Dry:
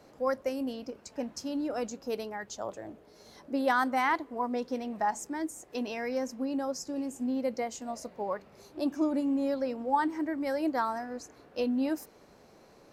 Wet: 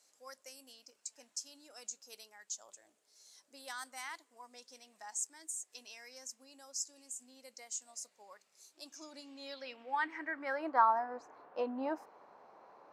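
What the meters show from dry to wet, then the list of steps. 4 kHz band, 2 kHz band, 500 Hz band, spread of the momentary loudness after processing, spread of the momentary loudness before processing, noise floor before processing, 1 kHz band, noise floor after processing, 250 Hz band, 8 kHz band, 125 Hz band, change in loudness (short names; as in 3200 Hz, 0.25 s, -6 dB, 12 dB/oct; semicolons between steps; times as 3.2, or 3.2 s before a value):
-4.0 dB, -6.5 dB, -12.0 dB, 19 LU, 11 LU, -58 dBFS, -5.0 dB, -76 dBFS, -18.0 dB, +3.5 dB, n/a, -7.0 dB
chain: band-pass sweep 7900 Hz -> 950 Hz, 8.71–10.92; gain +6.5 dB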